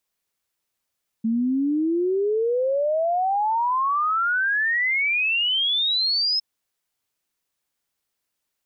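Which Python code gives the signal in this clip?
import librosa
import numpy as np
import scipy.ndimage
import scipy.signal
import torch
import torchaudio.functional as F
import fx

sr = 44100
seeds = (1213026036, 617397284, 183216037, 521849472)

y = fx.ess(sr, length_s=5.16, from_hz=220.0, to_hz=5200.0, level_db=-19.0)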